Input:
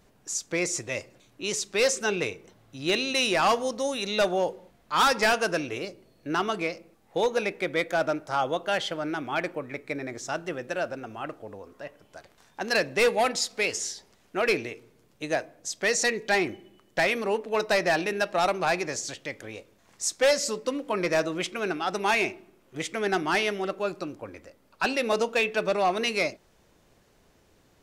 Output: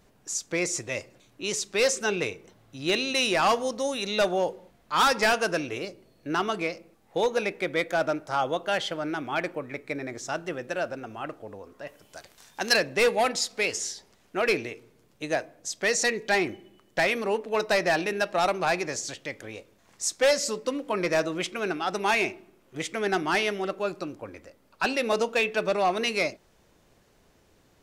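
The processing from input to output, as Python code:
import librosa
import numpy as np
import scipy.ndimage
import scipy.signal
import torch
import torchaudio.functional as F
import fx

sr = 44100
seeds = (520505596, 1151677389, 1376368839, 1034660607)

y = fx.high_shelf(x, sr, hz=fx.line((11.86, 3900.0), (12.74, 2200.0)), db=11.0, at=(11.86, 12.74), fade=0.02)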